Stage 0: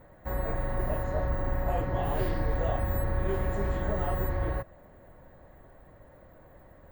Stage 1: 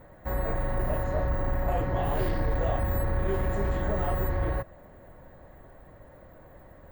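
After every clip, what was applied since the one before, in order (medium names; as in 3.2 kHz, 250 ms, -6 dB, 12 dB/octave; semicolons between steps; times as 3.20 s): saturation -21 dBFS, distortion -20 dB; trim +3 dB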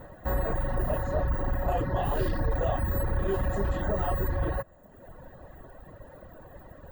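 Butterworth band-stop 2.2 kHz, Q 6; in parallel at -0.5 dB: peak limiter -30 dBFS, peak gain reduction 11.5 dB; on the sum: reverb removal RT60 1.1 s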